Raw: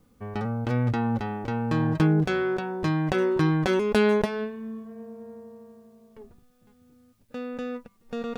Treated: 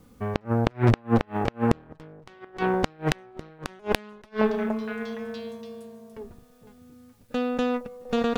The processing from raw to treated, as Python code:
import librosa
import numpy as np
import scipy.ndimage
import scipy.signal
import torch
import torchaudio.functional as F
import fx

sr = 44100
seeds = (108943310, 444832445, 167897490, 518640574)

y = fx.echo_stepped(x, sr, ms=465, hz=610.0, octaves=1.4, feedback_pct=70, wet_db=-11.5)
y = fx.cheby_harmonics(y, sr, harmonics=(5, 6, 8), levels_db=(-25, -7, -26), full_scale_db=-6.0)
y = fx.gate_flip(y, sr, shuts_db=-11.0, range_db=-34)
y = F.gain(torch.from_numpy(y), 5.0).numpy()